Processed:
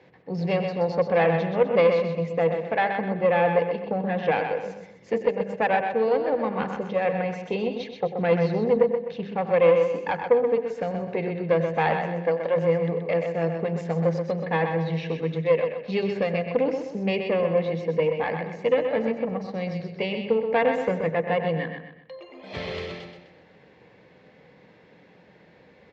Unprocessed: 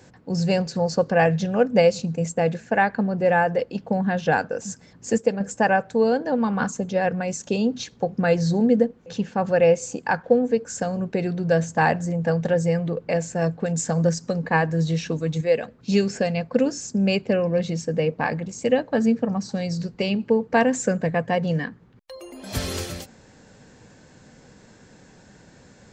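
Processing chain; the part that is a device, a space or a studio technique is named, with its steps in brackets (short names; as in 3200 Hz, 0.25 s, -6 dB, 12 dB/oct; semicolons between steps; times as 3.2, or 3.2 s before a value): notches 50/100/150/200/250/300/350/400/450 Hz; 11.75–12.55 HPF 110 Hz -> 360 Hz 24 dB/oct; high shelf 7700 Hz -4.5 dB; analogue delay pedal into a guitar amplifier (analogue delay 93 ms, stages 2048, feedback 30%, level -13 dB; tube stage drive 13 dB, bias 0.55; speaker cabinet 110–3700 Hz, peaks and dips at 110 Hz -8 dB, 240 Hz -8 dB, 470 Hz +4 dB, 1500 Hz -7 dB, 2100 Hz +7 dB); feedback echo 0.127 s, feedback 37%, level -6.5 dB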